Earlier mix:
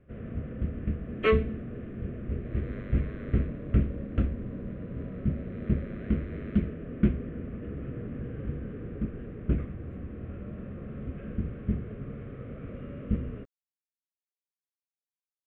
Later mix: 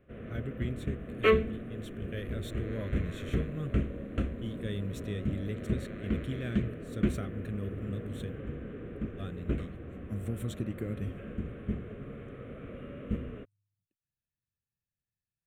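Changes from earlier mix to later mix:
speech: unmuted
first sound: add bass and treble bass −6 dB, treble +14 dB
second sound: remove high-frequency loss of the air 100 metres

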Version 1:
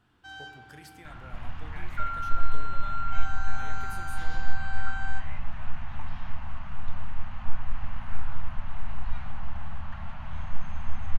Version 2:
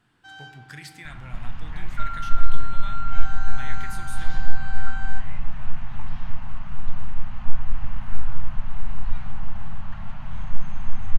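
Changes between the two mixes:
speech: add graphic EQ with 10 bands 125 Hz +11 dB, 250 Hz +3 dB, 500 Hz −5 dB, 1,000 Hz +4 dB, 2,000 Hz +10 dB, 4,000 Hz +8 dB, 8,000 Hz +7 dB
second sound: add bass and treble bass +7 dB, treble +4 dB
master: add parametric band 71 Hz −13 dB 0.48 octaves

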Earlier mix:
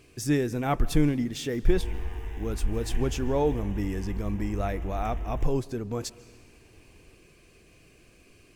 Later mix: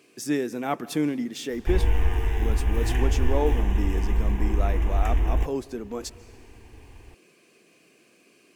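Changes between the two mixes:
speech: add high-pass filter 190 Hz 24 dB per octave
background +11.0 dB

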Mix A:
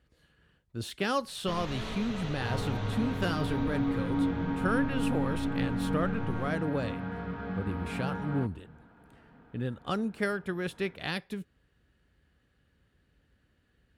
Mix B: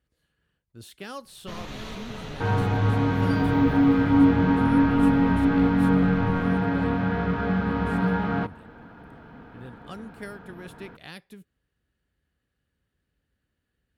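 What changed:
speech −9.0 dB
second sound +11.5 dB
master: add high-shelf EQ 9,800 Hz +12 dB

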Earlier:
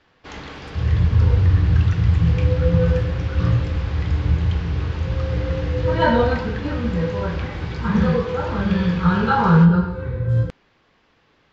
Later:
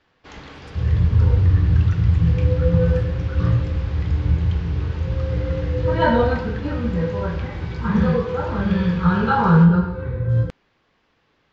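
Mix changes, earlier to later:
first sound −4.5 dB
second sound: add high-shelf EQ 4,000 Hz −6 dB

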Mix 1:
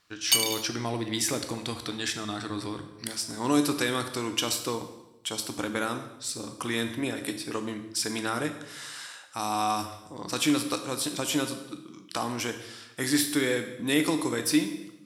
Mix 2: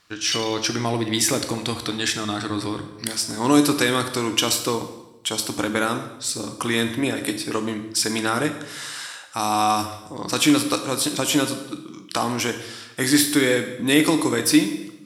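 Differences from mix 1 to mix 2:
speech +7.5 dB
background: add resonant band-pass 3,300 Hz, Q 2.6

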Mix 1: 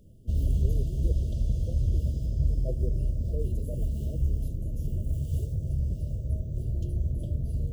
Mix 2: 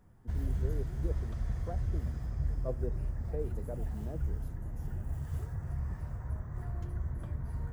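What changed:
background −7.5 dB
master: remove linear-phase brick-wall band-stop 670–2,700 Hz

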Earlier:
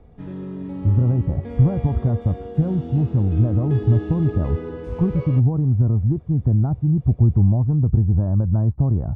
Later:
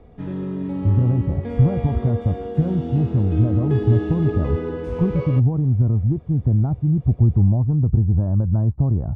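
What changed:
speech: add high-frequency loss of the air 240 metres
background +4.5 dB

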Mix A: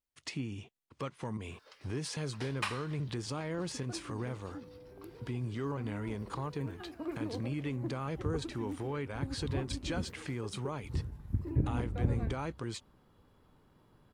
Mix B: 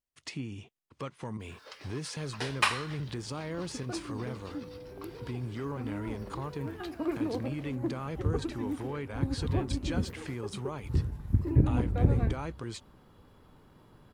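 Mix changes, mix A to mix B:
first sound +9.5 dB
second sound +7.0 dB

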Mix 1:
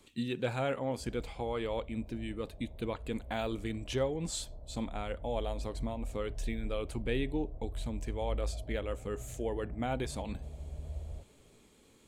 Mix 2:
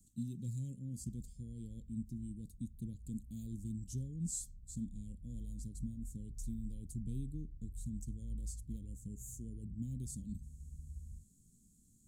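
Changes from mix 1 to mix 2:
background −6.5 dB
master: add elliptic band-stop filter 200–6,800 Hz, stop band 80 dB

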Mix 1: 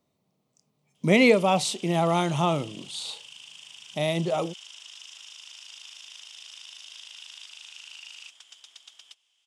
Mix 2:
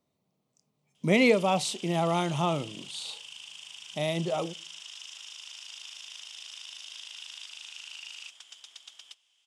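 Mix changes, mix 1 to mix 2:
speech −3.5 dB
background: send on

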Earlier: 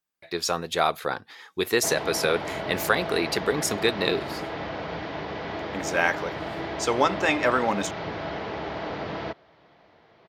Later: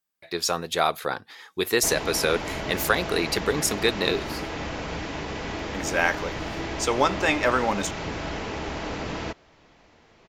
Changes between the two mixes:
background: remove loudspeaker in its box 110–4,500 Hz, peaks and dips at 250 Hz −6 dB, 670 Hz +4 dB, 2,600 Hz −5 dB
master: add high-shelf EQ 5,600 Hz +4.5 dB

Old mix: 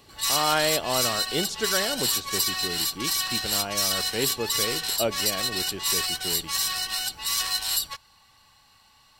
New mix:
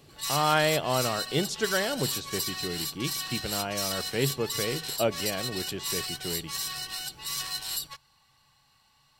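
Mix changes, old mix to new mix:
background −7.0 dB
master: add parametric band 140 Hz +11 dB 0.27 octaves

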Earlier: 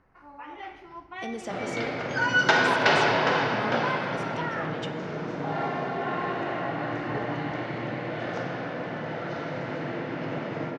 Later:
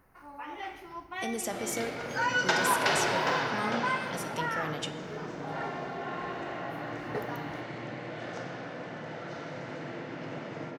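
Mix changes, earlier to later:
second sound −7.5 dB
master: remove high-frequency loss of the air 130 metres

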